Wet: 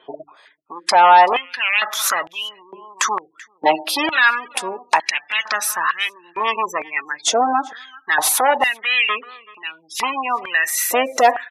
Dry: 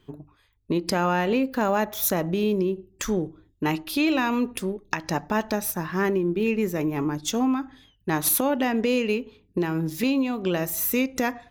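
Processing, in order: sine folder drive 11 dB, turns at -8 dBFS; LPF 11000 Hz 24 dB/oct; spectral gate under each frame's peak -25 dB strong; outdoor echo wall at 66 m, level -21 dB; stepped high-pass 2.2 Hz 650–2900 Hz; gain -2.5 dB

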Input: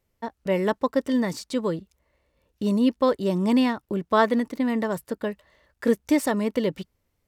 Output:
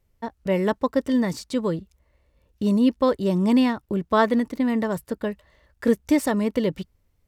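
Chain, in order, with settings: low shelf 110 Hz +11.5 dB

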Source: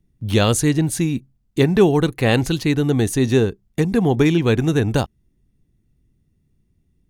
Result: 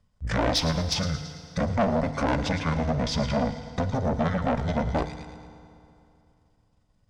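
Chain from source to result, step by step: delay-line pitch shifter -10.5 st; LPF 8600 Hz 12 dB/oct; de-hum 50.23 Hz, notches 3; in parallel at +2 dB: level quantiser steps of 13 dB; on the sum: bell 300 Hz +11.5 dB 1.7 oct; on a send: thin delay 0.111 s, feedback 46%, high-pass 2900 Hz, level -8 dB; on the sum: tube stage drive 9 dB, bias 0.3; compressor 2:1, threshold -21 dBFS, peak gain reduction 6 dB; resonant low shelf 450 Hz -7 dB, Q 3; FDN reverb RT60 2.7 s, high-frequency decay 0.85×, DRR 11 dB

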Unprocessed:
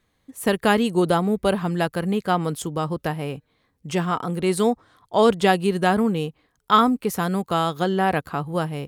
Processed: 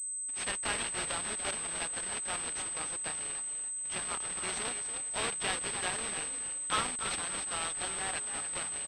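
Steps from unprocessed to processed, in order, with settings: companded quantiser 4-bit; differentiator; on a send: frequency-shifting echo 0.288 s, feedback 35%, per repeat +43 Hz, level -9 dB; on the sum: pulse-width modulation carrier 8200 Hz; gain -2.5 dB

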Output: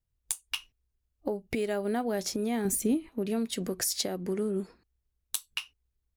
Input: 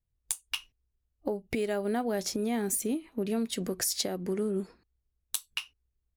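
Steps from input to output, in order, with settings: 2.65–3.09 low shelf 240 Hz +10 dB

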